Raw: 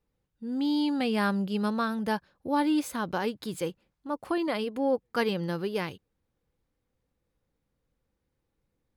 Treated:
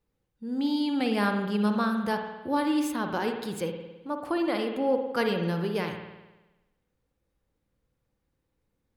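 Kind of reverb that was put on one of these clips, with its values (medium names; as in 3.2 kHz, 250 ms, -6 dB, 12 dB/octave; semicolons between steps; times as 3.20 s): spring tank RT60 1.1 s, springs 53 ms, chirp 35 ms, DRR 4.5 dB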